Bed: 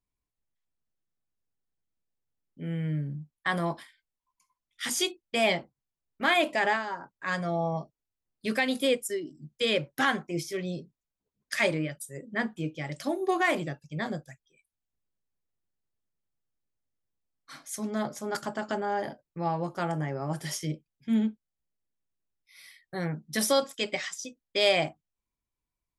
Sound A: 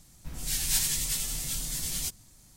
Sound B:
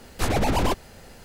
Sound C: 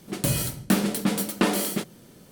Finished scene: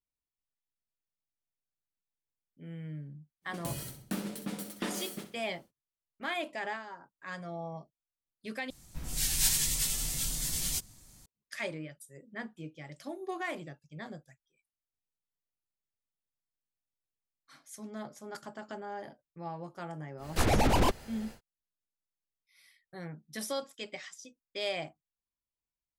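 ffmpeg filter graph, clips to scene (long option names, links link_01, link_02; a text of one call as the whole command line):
ffmpeg -i bed.wav -i cue0.wav -i cue1.wav -i cue2.wav -filter_complex "[0:a]volume=-11dB[link_01];[3:a]aecho=1:1:63|126|189|252:0.299|0.0985|0.0325|0.0107[link_02];[link_01]asplit=2[link_03][link_04];[link_03]atrim=end=8.704[link_05];[1:a]atrim=end=2.56,asetpts=PTS-STARTPTS,volume=-0.5dB[link_06];[link_04]atrim=start=11.256[link_07];[link_02]atrim=end=2.31,asetpts=PTS-STARTPTS,volume=-14.5dB,afade=type=in:duration=0.1,afade=type=out:start_time=2.21:duration=0.1,adelay=150381S[link_08];[2:a]atrim=end=1.24,asetpts=PTS-STARTPTS,volume=-3dB,afade=type=in:duration=0.1,afade=type=out:start_time=1.14:duration=0.1,adelay=20170[link_09];[link_05][link_06]acrossfade=duration=0.004:curve1=hsin:curve2=hsin[link_10];[link_10][link_07]acrossfade=duration=0.004:curve1=hsin:curve2=hsin[link_11];[link_11][link_08][link_09]amix=inputs=3:normalize=0" out.wav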